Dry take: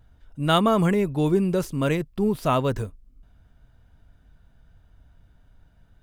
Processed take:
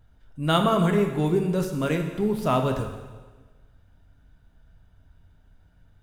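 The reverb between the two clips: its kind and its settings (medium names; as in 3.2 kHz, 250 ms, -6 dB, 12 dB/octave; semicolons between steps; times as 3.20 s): plate-style reverb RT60 1.3 s, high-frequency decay 0.95×, DRR 4 dB; trim -2.5 dB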